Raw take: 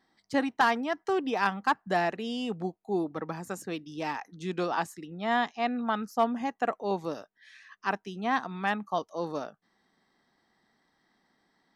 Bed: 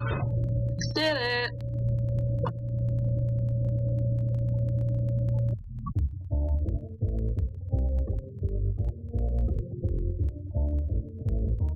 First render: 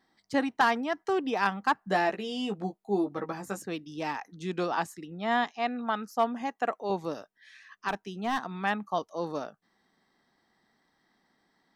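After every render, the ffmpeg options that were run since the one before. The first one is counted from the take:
-filter_complex "[0:a]asettb=1/sr,asplit=3[a][b][c];[a]atrim=end=1.804[d];[b]atrim=start=1.8:end=3.59,asetpts=PTS-STARTPTS,afade=t=in:d=0.004:c=qsin,afade=t=out:st=1.786:d=0.004:c=qsin,asplit=2[e][f];[f]adelay=15,volume=-5.5dB[g];[e][g]amix=inputs=2:normalize=0,atrim=end_sample=78939[h];[c]atrim=start=3.586[i];[d][h]acrossfade=d=0.004:c1=hsin:c2=qsin[j];[j][i]acrossfade=d=0.004:c1=qsin:c2=hsin,asettb=1/sr,asplit=3[k][l][m];[k]atrim=end=5.444[n];[l]atrim=start=5.44:end=6.9,asetpts=PTS-STARTPTS,afade=t=in:d=0.004:c=qsin,afade=t=out:st=1.456:d=0.004:c=qsin,lowshelf=f=160:g=-10.5[o];[m]atrim=start=6.896[p];[n][o]acrossfade=d=0.004:c1=hsin:c2=qsin[q];[q][p]acrossfade=d=0.004:c1=qsin:c2=hsin,asettb=1/sr,asplit=3[r][s][t];[r]atrim=end=7.884[u];[s]atrim=start=7.88:end=8.54,asetpts=PTS-STARTPTS,afade=t=in:d=0.004:c=qsin,afade=t=out:st=0.656:d=0.004:c=qsin,asoftclip=type=hard:threshold=-23.5dB[v];[t]atrim=start=8.536[w];[u][v]acrossfade=d=0.004:c1=hsin:c2=qsin[x];[x][w]acrossfade=d=0.004:c1=qsin:c2=hsin"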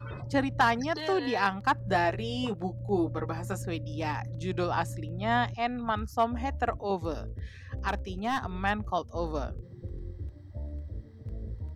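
-filter_complex "[1:a]volume=-10.5dB[a];[0:a][a]amix=inputs=2:normalize=0"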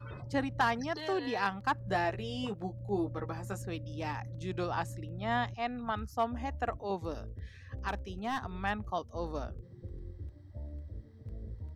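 -af "volume=-5dB"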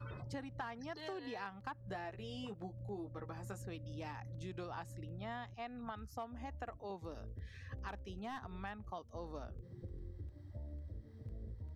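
-filter_complex "[0:a]acrossover=split=3300[a][b];[b]alimiter=level_in=15.5dB:limit=-24dB:level=0:latency=1:release=221,volume=-15.5dB[c];[a][c]amix=inputs=2:normalize=0,acompressor=threshold=-44dB:ratio=4"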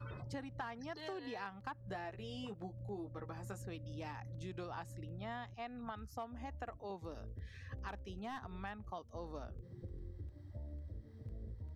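-af anull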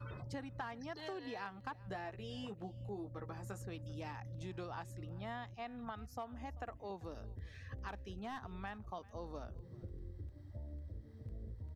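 -af "aecho=1:1:390:0.0841"

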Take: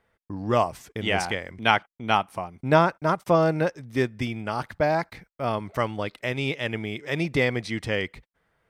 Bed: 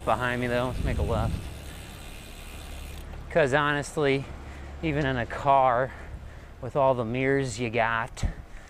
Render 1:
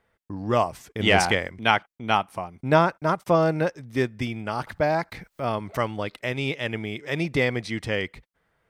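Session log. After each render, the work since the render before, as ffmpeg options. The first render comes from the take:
-filter_complex "[0:a]asplit=3[a][b][c];[a]afade=t=out:st=0.99:d=0.02[d];[b]acontrast=61,afade=t=in:st=0.99:d=0.02,afade=t=out:st=1.47:d=0.02[e];[c]afade=t=in:st=1.47:d=0.02[f];[d][e][f]amix=inputs=3:normalize=0,asettb=1/sr,asplit=3[g][h][i];[g]atrim=end=4.674[j];[h]atrim=start=4.67:end=6.17,asetpts=PTS-STARTPTS,afade=t=in:d=0.004:c=qsin,afade=t=out:st=1.496:d=0.004:c=qsin,acompressor=mode=upward:threshold=-30dB:ratio=2.5:attack=3.2:release=140:knee=2.83:detection=peak[k];[i]atrim=start=6.166[l];[j][k]acrossfade=d=0.004:c1=hsin:c2=qsin[m];[m][l]acrossfade=d=0.004:c1=qsin:c2=hsin"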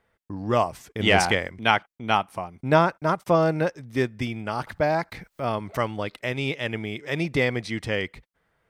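-af anull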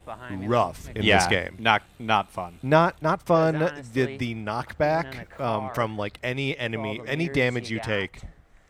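-filter_complex "[1:a]volume=-13dB[a];[0:a][a]amix=inputs=2:normalize=0"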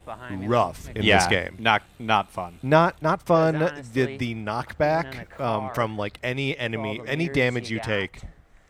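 -af "volume=1dB,alimiter=limit=-3dB:level=0:latency=1"

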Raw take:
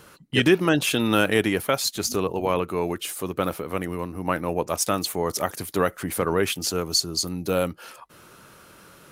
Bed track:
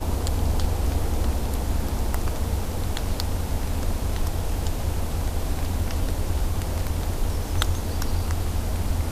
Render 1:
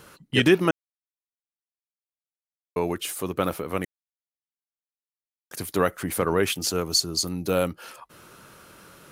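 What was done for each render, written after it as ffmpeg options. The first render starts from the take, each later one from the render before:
-filter_complex "[0:a]asplit=5[a][b][c][d][e];[a]atrim=end=0.71,asetpts=PTS-STARTPTS,afade=t=out:st=0.706:d=0.004:c=hsin[f];[b]atrim=start=0.71:end=2.76,asetpts=PTS-STARTPTS,volume=0[g];[c]atrim=start=2.76:end=3.85,asetpts=PTS-STARTPTS,afade=t=in:d=0.004:c=hsin,afade=t=out:st=1.086:d=0.004:c=hsin[h];[d]atrim=start=3.85:end=5.51,asetpts=PTS-STARTPTS,volume=0[i];[e]atrim=start=5.51,asetpts=PTS-STARTPTS,afade=t=in:d=0.004:c=hsin[j];[f][g][h][i][j]concat=n=5:v=0:a=1"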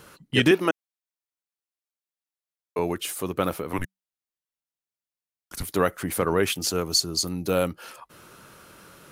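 -filter_complex "[0:a]asettb=1/sr,asplit=3[a][b][c];[a]atrim=end=0.514[d];[b]atrim=start=0.51:end=2.79,asetpts=PTS-STARTPTS,afade=t=in:d=0.004:c=qsin,afade=t=out:st=2.276:d=0.004:c=qsin,highpass=270[e];[c]atrim=start=2.786[f];[d][e]acrossfade=d=0.004:c1=hsin:c2=qsin[g];[g][f]acrossfade=d=0.004:c1=qsin:c2=hsin,asettb=1/sr,asplit=3[h][i][j];[h]atrim=end=3.734[k];[i]atrim=start=3.73:end=5.63,asetpts=PTS-STARTPTS,afade=t=in:d=0.004:c=qsin,afade=t=out:st=1.896:d=0.004:c=qsin,afreqshift=-190[l];[j]atrim=start=5.626[m];[k][l]acrossfade=d=0.004:c1=hsin:c2=qsin[n];[n][m]acrossfade=d=0.004:c1=qsin:c2=hsin"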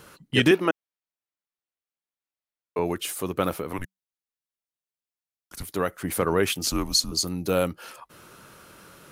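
-filter_complex "[0:a]asettb=1/sr,asplit=3[a][b][c];[a]atrim=end=0.564[d];[b]atrim=start=0.56:end=2.86,asetpts=PTS-STARTPTS,afade=t=in:d=0.004:c=qsin,afade=t=out:st=2.296:d=0.004:c=qsin,bass=f=250:g=0,treble=f=4k:g=-8[e];[c]atrim=start=2.856[f];[d][e]acrossfade=d=0.004:c1=hsin:c2=qsin[g];[g][f]acrossfade=d=0.004:c1=qsin:c2=hsin,asettb=1/sr,asplit=3[h][i][j];[h]atrim=end=6.654[k];[i]atrim=start=6.65:end=7.12,asetpts=PTS-STARTPTS,afade=t=in:d=0.004:c=qsin,afade=t=out:st=0.466:d=0.004:c=qsin,afreqshift=-140[l];[j]atrim=start=7.116[m];[k][l]acrossfade=d=0.004:c1=hsin:c2=qsin[n];[n][m]acrossfade=d=0.004:c1=qsin:c2=hsin,asplit=3[o][p][q];[o]atrim=end=3.732[r];[p]atrim=start=3.728:end=6.042,asetpts=PTS-STARTPTS,volume=-4dB[s];[q]atrim=start=6.038[t];[r][s]acrossfade=d=0.004:c1=hsin:c2=hsin[u];[u][t]acrossfade=d=0.004:c1=hsin:c2=hsin"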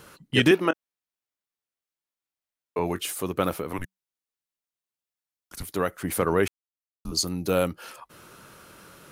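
-filter_complex "[0:a]asettb=1/sr,asplit=3[a][b][c];[a]atrim=end=0.664[d];[b]atrim=start=0.66:end=3.03,asetpts=PTS-STARTPTS,afade=t=in:d=0.004:c=qsin,afade=t=out:st=2.366:d=0.004:c=qsin,asplit=2[e][f];[f]adelay=22,volume=-12.5dB[g];[e][g]amix=inputs=2:normalize=0,atrim=end_sample=104517[h];[c]atrim=start=3.026[i];[d][h]acrossfade=d=0.004:c1=hsin:c2=qsin[j];[j][i]acrossfade=d=0.004:c1=qsin:c2=hsin,asplit=3[k][l][m];[k]atrim=end=6.48,asetpts=PTS-STARTPTS,afade=t=out:st=6.476:d=0.004:c=hsin[n];[l]atrim=start=6.48:end=7.05,asetpts=PTS-STARTPTS,volume=0[o];[m]atrim=start=7.05,asetpts=PTS-STARTPTS,afade=t=in:d=0.004:c=hsin[p];[n][o][p]concat=n=3:v=0:a=1"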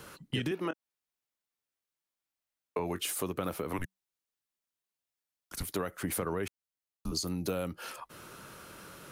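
-filter_complex "[0:a]acrossover=split=230[a][b];[b]alimiter=limit=-17dB:level=0:latency=1:release=49[c];[a][c]amix=inputs=2:normalize=0,acompressor=threshold=-30dB:ratio=6"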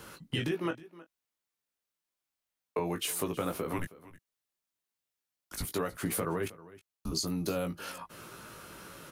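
-filter_complex "[0:a]asplit=2[a][b];[b]adelay=18,volume=-5.5dB[c];[a][c]amix=inputs=2:normalize=0,aecho=1:1:317:0.112"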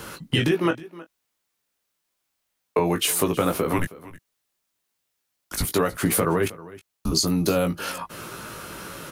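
-af "volume=11dB"

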